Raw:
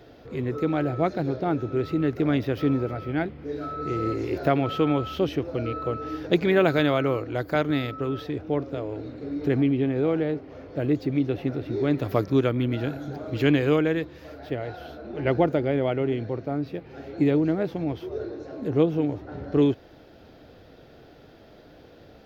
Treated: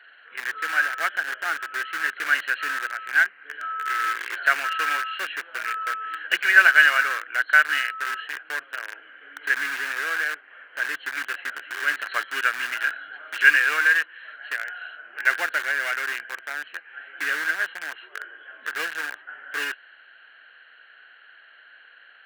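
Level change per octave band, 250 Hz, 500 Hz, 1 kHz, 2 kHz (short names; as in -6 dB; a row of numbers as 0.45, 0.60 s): under -25 dB, -17.5 dB, +4.0 dB, +17.5 dB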